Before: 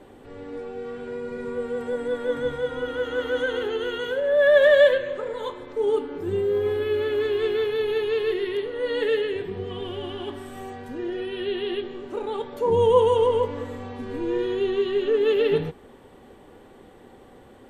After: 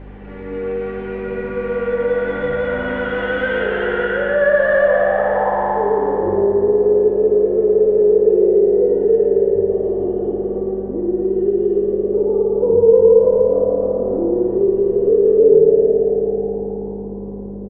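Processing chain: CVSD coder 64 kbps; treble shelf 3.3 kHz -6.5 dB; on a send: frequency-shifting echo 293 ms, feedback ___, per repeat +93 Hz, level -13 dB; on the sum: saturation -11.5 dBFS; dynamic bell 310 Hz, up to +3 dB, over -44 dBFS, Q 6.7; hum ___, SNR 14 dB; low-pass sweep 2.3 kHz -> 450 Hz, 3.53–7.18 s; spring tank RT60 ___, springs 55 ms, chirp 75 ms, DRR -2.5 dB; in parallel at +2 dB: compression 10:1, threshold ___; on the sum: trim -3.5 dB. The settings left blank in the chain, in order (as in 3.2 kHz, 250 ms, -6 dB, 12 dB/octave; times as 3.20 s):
56%, 50 Hz, 3.3 s, -19 dBFS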